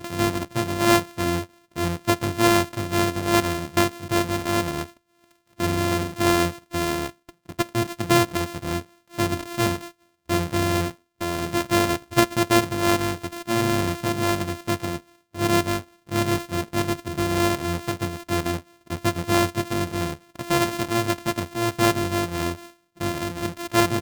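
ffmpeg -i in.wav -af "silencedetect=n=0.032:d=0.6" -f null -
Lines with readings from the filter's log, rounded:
silence_start: 4.84
silence_end: 5.60 | silence_duration: 0.76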